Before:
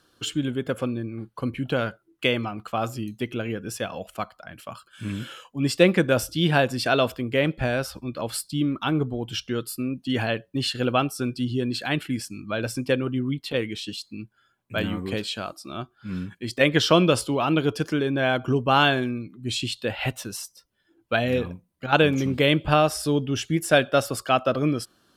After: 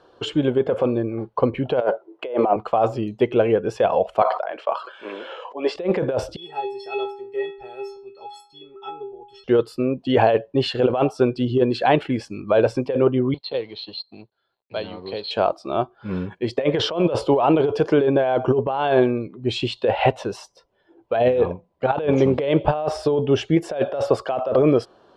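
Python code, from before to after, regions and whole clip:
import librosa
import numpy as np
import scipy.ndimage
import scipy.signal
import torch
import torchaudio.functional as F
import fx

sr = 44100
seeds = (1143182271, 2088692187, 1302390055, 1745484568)

y = fx.chain(x, sr, fx.bessel_highpass(hz=280.0, order=2),
    fx.peak_eq(hz=550.0, db=11.5, octaves=2.6), at=(1.81, 2.56))
y = fx.chain(y, sr, fx.highpass(hz=380.0, slope=24),
    fx.air_absorb(metres=100.0),
    fx.sustainer(db_per_s=54.0), at=(4.22, 5.76))
y = fx.chain(y, sr, fx.high_shelf(hz=4100.0, db=11.0),
    fx.stiff_resonator(f0_hz=390.0, decay_s=0.58, stiffness=0.03), at=(6.36, 9.44))
y = fx.chain(y, sr, fx.law_mismatch(coded='A'),
    fx.ladder_lowpass(hz=4300.0, resonance_pct=90),
    fx.band_squash(depth_pct=40), at=(13.34, 15.31))
y = scipy.signal.sosfilt(scipy.signal.butter(2, 3500.0, 'lowpass', fs=sr, output='sos'), y)
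y = fx.band_shelf(y, sr, hz=620.0, db=13.0, octaves=1.7)
y = fx.over_compress(y, sr, threshold_db=-17.0, ratio=-1.0)
y = y * librosa.db_to_amplitude(-1.0)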